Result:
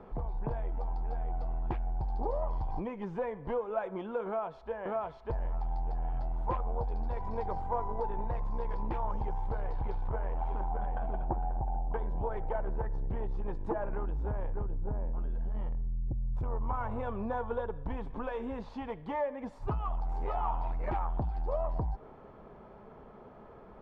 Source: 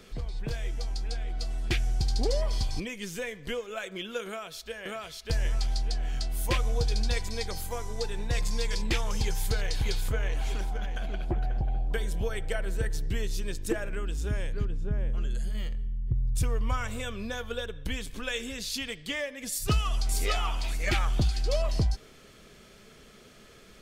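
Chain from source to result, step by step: compression, threshold -28 dBFS, peak gain reduction 7.5 dB; Chebyshev shaper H 5 -13 dB, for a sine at -19 dBFS; resonant low-pass 900 Hz, resonance Q 4.9; trim -5.5 dB

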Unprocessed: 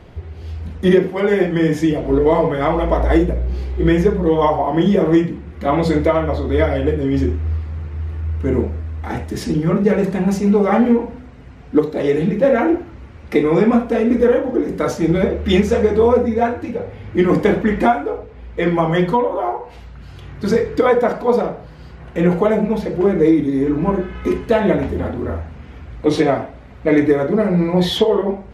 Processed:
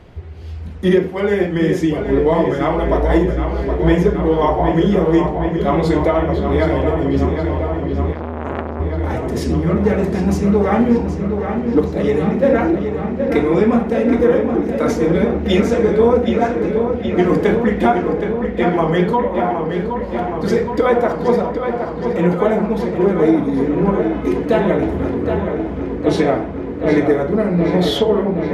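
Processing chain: filtered feedback delay 770 ms, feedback 80%, low-pass 4.8 kHz, level -7 dB; 8.13–8.80 s: transformer saturation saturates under 1.2 kHz; trim -1 dB

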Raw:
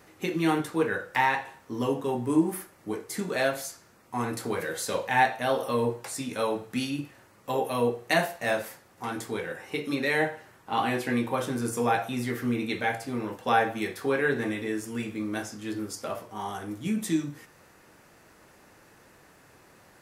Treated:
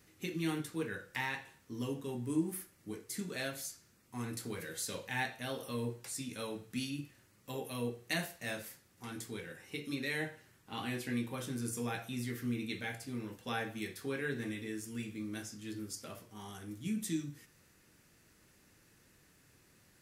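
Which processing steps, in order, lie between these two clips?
peaking EQ 790 Hz -14 dB 2.2 oct; trim -4.5 dB

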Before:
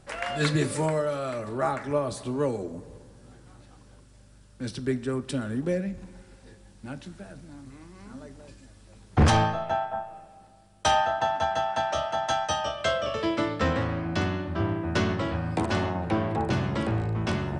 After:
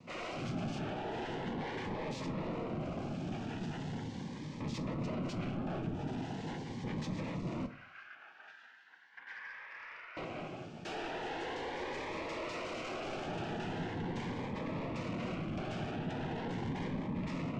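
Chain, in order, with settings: level rider gain up to 16.5 dB; peak limiter -23.5 dBFS, peak gain reduction 22 dB; hard clipper -28 dBFS, distortion -15 dB; noise-vocoded speech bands 4; 7.66–10.17 s: ladder band-pass 1.7 kHz, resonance 75%; saturation -37 dBFS, distortion -7 dB; distance through air 160 m; reverberation RT60 0.40 s, pre-delay 6 ms, DRR 7 dB; Shepard-style phaser rising 0.4 Hz; trim +1.5 dB

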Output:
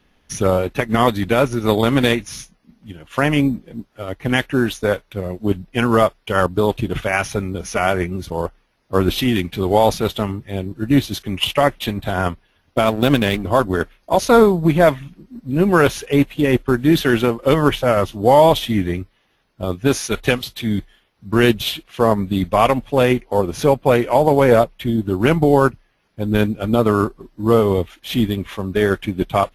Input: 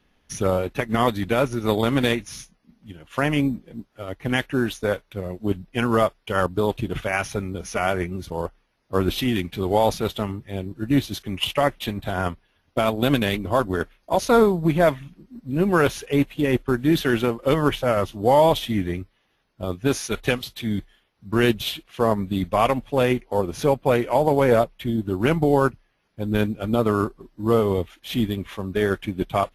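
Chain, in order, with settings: 12.84–13.43 s: hysteresis with a dead band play -31.5 dBFS; trim +5 dB

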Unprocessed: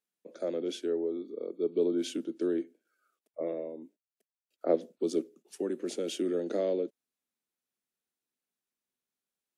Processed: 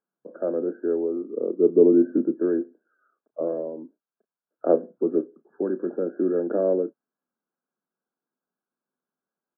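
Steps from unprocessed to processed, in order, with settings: 1.36–2.40 s: tilt shelf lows +7 dB, about 940 Hz; doubling 32 ms -14 dB; FFT band-pass 130–1700 Hz; trim +7 dB

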